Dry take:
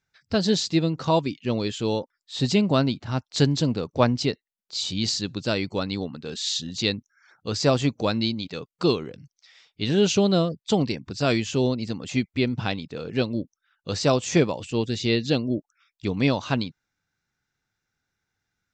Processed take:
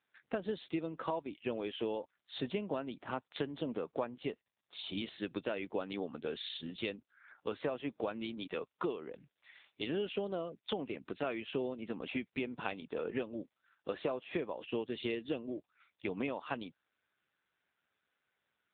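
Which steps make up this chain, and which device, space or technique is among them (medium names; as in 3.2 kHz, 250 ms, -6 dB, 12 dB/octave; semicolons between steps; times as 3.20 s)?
voicemail (band-pass 350–3100 Hz; compression 12:1, threshold -33 dBFS, peak gain reduction 18.5 dB; trim +1 dB; AMR-NB 6.7 kbps 8 kHz)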